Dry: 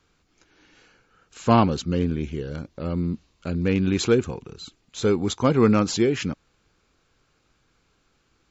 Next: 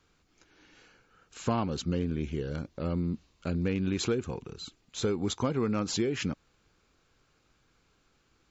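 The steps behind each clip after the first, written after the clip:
downward compressor 6 to 1, threshold −23 dBFS, peak gain reduction 10.5 dB
level −2.5 dB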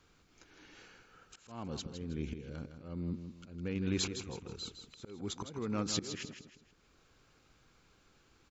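volume swells 726 ms
on a send: repeating echo 160 ms, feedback 36%, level −9 dB
on the sum: level +1.5 dB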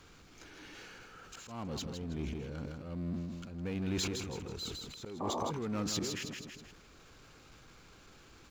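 power curve on the samples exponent 0.7
sound drawn into the spectrogram noise, 0:05.20–0:05.51, 220–1,200 Hz −33 dBFS
level that may fall only so fast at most 31 dB per second
level −4 dB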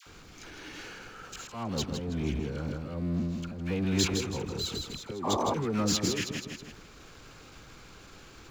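all-pass dispersion lows, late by 65 ms, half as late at 910 Hz
level +7 dB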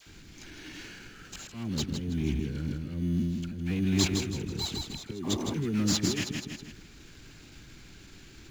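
flat-topped bell 770 Hz −15 dB
in parallel at −11 dB: decimation without filtering 14×

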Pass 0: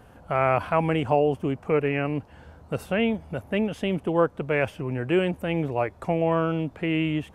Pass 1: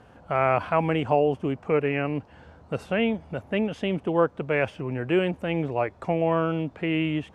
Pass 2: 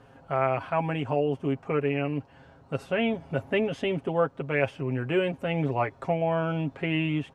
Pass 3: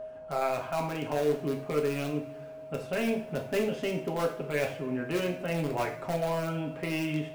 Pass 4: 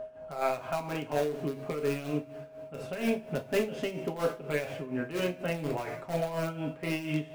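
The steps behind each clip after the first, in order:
low-pass filter 6,500 Hz 12 dB per octave; low-shelf EQ 65 Hz −8.5 dB
comb filter 7.4 ms, depth 61%; speech leveller 0.5 s; level −3 dB
in parallel at −10 dB: wrap-around overflow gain 18.5 dB; on the sum: steady tone 630 Hz −31 dBFS; coupled-rooms reverb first 0.44 s, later 3.4 s, from −22 dB, DRR 2 dB; level −7 dB
amplitude tremolo 4.2 Hz, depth 70%; level +1.5 dB

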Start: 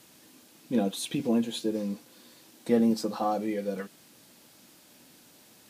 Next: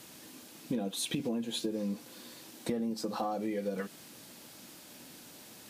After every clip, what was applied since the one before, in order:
in parallel at −1 dB: brickwall limiter −21.5 dBFS, peak gain reduction 9 dB
on the sum: downward compressor 16 to 1, threshold −29 dBFS, peak gain reduction 14.5 dB
level −1 dB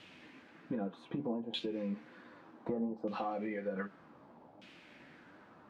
flanger 1.3 Hz, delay 9.4 ms, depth 5.4 ms, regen +58%
auto-filter low-pass saw down 0.65 Hz 750–2,900 Hz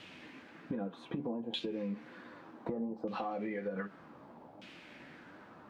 downward compressor 3 to 1, threshold −39 dBFS, peak gain reduction 6.5 dB
level +4 dB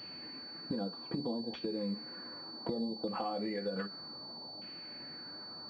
switching amplifier with a slow clock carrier 4,500 Hz
level +1 dB

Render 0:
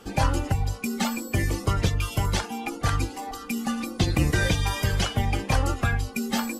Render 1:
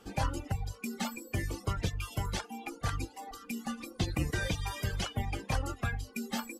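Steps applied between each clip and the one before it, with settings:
reverb reduction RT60 0.69 s
level −8.5 dB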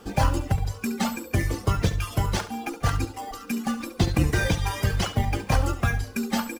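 in parallel at −6 dB: decimation without filtering 11×
on the sum: repeating echo 70 ms, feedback 37%, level −13.5 dB
level +6.5 dB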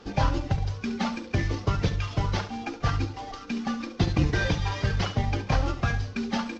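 variable-slope delta modulation 32 kbit/s
on a send at −16 dB: convolution reverb RT60 0.75 s, pre-delay 7 ms
on the sum: level −1.5 dB

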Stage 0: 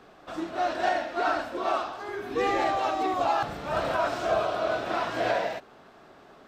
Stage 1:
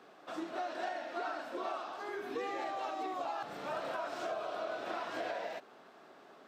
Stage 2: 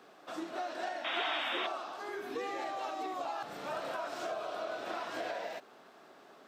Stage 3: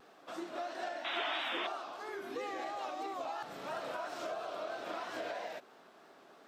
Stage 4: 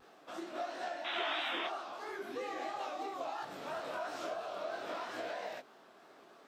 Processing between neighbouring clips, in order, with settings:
high-pass filter 230 Hz 12 dB per octave; downward compressor, threshold −31 dBFS, peak gain reduction 10 dB; level −4.5 dB
high-shelf EQ 5,200 Hz +6 dB; sound drawn into the spectrogram noise, 0:01.04–0:01.67, 630–3,800 Hz −36 dBFS
pitch vibrato 3 Hz 79 cents; level −2 dB
micro pitch shift up and down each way 50 cents; level +3.5 dB

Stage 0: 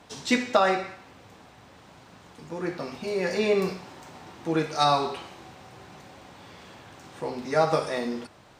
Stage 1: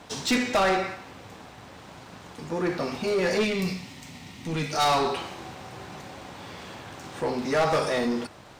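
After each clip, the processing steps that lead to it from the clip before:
soft clipping −20.5 dBFS, distortion −10 dB
gain on a spectral selection 0:03.44–0:04.73, 300–1,800 Hz −11 dB
leveller curve on the samples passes 1
level +2.5 dB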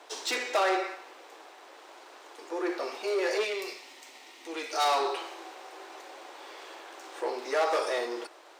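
elliptic high-pass filter 340 Hz, stop band 50 dB
level −3 dB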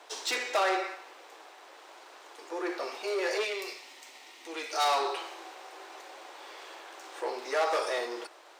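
low-shelf EQ 270 Hz −9 dB

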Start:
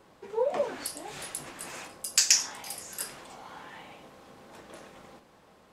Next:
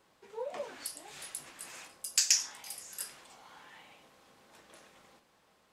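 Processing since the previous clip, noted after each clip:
tilt shelving filter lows −4.5 dB, about 1,200 Hz
level −8.5 dB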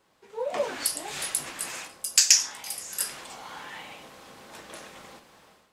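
automatic gain control gain up to 13.5 dB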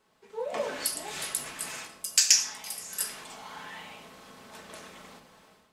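rectangular room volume 3,500 cubic metres, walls furnished, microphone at 1.5 metres
level −3 dB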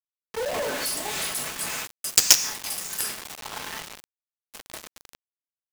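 log-companded quantiser 2 bits
level −1 dB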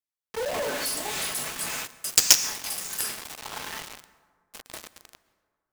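dense smooth reverb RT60 1.7 s, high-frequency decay 0.45×, pre-delay 105 ms, DRR 17.5 dB
level −1 dB

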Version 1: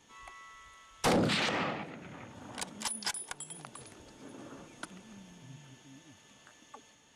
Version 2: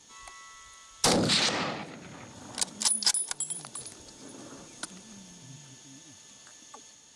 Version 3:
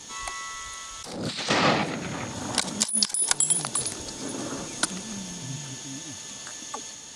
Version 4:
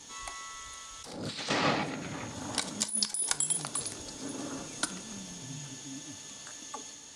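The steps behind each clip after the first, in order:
flat-topped bell 6,300 Hz +10.5 dB; level +1.5 dB
compressor whose output falls as the input rises −32 dBFS, ratio −0.5; level +8.5 dB
convolution reverb RT60 0.45 s, pre-delay 4 ms, DRR 10 dB; level −7 dB

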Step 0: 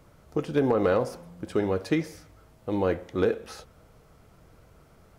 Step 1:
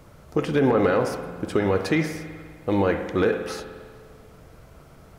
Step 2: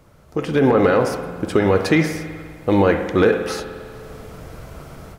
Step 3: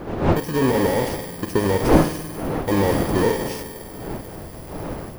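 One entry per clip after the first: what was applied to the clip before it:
dynamic equaliser 1,900 Hz, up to +6 dB, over −46 dBFS, Q 1.1; brickwall limiter −18 dBFS, peak gain reduction 7.5 dB; spring reverb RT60 1.8 s, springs 50 ms, chirp 65 ms, DRR 8 dB; level +6.5 dB
automatic gain control gain up to 14 dB; level −2.5 dB
samples in bit-reversed order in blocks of 32 samples; wind on the microphone 510 Hz −23 dBFS; slew-rate limiting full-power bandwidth 280 Hz; level −2.5 dB

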